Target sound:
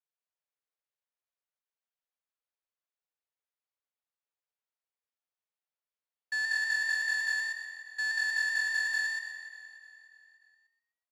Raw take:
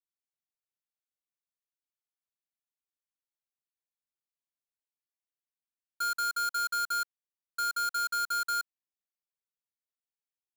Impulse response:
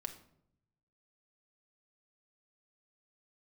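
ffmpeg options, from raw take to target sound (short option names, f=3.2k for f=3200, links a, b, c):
-filter_complex "[0:a]asplit=2[a][b];[b]aecho=0:1:281|562|843|1124|1405:0.266|0.136|0.0692|0.0353|0.018[c];[a][c]amix=inputs=2:normalize=0,afreqshift=420,adynamicsmooth=sensitivity=3.5:basefreq=4k,asplit=2[d][e];[e]asplit=4[f][g][h][i];[f]adelay=119,afreqshift=45,volume=-3dB[j];[g]adelay=238,afreqshift=90,volume=-12.9dB[k];[h]adelay=357,afreqshift=135,volume=-22.8dB[l];[i]adelay=476,afreqshift=180,volume=-32.7dB[m];[j][k][l][m]amix=inputs=4:normalize=0[n];[d][n]amix=inputs=2:normalize=0,asetrate=41895,aresample=44100"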